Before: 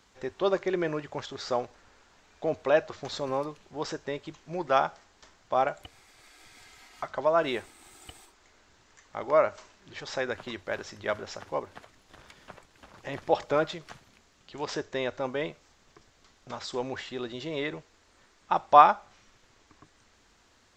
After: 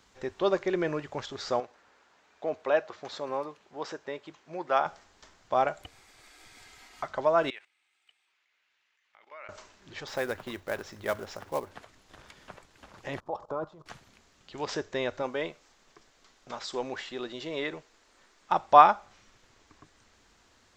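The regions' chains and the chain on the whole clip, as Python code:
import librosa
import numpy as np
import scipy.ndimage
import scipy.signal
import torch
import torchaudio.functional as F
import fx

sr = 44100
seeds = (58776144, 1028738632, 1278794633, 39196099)

y = fx.chain(x, sr, fx.highpass(hz=470.0, slope=6),
    fx.high_shelf(hz=3600.0, db=-9.0), at=(1.6, 4.86))
y = fx.chain(y, sr, fx.bandpass_q(hz=2500.0, q=2.2),
    fx.level_steps(step_db=15), at=(7.5, 9.49))
y = fx.chain(y, sr, fx.high_shelf(hz=2500.0, db=-5.0),
    fx.quant_float(bits=2), at=(10.07, 11.71))
y = fx.chain(y, sr, fx.level_steps(step_db=17),
    fx.high_shelf_res(hz=1500.0, db=-11.0, q=3.0), at=(13.2, 13.86))
y = fx.chain(y, sr, fx.peak_eq(hz=80.0, db=-10.5, octaves=2.1),
    fx.overload_stage(gain_db=18.5), at=(15.22, 18.52))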